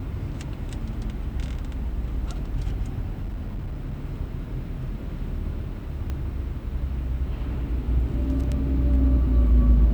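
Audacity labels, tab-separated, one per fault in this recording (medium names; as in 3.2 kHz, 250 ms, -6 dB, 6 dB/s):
3.220000	3.940000	clipped -27 dBFS
6.100000	6.100000	pop -19 dBFS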